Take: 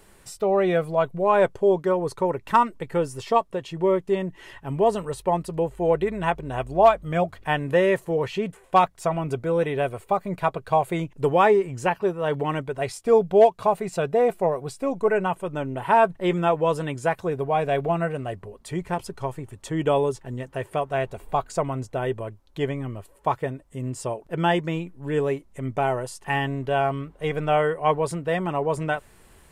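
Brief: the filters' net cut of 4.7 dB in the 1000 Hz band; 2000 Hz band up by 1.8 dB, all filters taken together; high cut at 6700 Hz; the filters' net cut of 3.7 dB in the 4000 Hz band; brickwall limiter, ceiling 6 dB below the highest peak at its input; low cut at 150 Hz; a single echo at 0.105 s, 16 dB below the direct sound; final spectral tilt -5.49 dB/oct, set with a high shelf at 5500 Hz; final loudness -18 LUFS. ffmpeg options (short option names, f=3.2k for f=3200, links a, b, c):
-af "highpass=150,lowpass=6.7k,equalizer=f=1k:t=o:g=-7.5,equalizer=f=2k:t=o:g=7,equalizer=f=4k:t=o:g=-7,highshelf=f=5.5k:g=-4,alimiter=limit=-13.5dB:level=0:latency=1,aecho=1:1:105:0.158,volume=9dB"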